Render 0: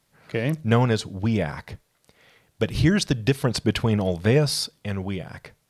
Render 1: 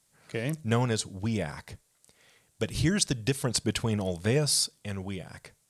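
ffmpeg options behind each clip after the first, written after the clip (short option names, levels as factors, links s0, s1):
-af "equalizer=f=8200:t=o:w=1.2:g=13.5,volume=0.447"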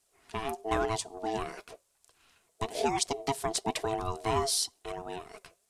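-af "aeval=exprs='val(0)*sin(2*PI*550*n/s)':c=same,flanger=delay=0.8:depth=5.4:regen=59:speed=1:shape=triangular,volume=1.5"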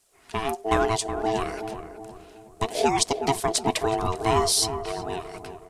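-filter_complex "[0:a]asplit=2[s0][s1];[s1]adelay=370,lowpass=f=1100:p=1,volume=0.398,asplit=2[s2][s3];[s3]adelay=370,lowpass=f=1100:p=1,volume=0.49,asplit=2[s4][s5];[s5]adelay=370,lowpass=f=1100:p=1,volume=0.49,asplit=2[s6][s7];[s7]adelay=370,lowpass=f=1100:p=1,volume=0.49,asplit=2[s8][s9];[s9]adelay=370,lowpass=f=1100:p=1,volume=0.49,asplit=2[s10][s11];[s11]adelay=370,lowpass=f=1100:p=1,volume=0.49[s12];[s0][s2][s4][s6][s8][s10][s12]amix=inputs=7:normalize=0,volume=2.24"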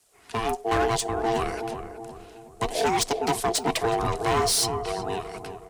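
-af "asoftclip=type=hard:threshold=0.1,afreqshift=17,volume=1.19"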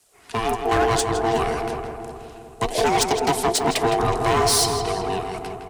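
-filter_complex "[0:a]asplit=2[s0][s1];[s1]adelay=162,lowpass=f=3300:p=1,volume=0.501,asplit=2[s2][s3];[s3]adelay=162,lowpass=f=3300:p=1,volume=0.46,asplit=2[s4][s5];[s5]adelay=162,lowpass=f=3300:p=1,volume=0.46,asplit=2[s6][s7];[s7]adelay=162,lowpass=f=3300:p=1,volume=0.46,asplit=2[s8][s9];[s9]adelay=162,lowpass=f=3300:p=1,volume=0.46,asplit=2[s10][s11];[s11]adelay=162,lowpass=f=3300:p=1,volume=0.46[s12];[s0][s2][s4][s6][s8][s10][s12]amix=inputs=7:normalize=0,volume=1.5"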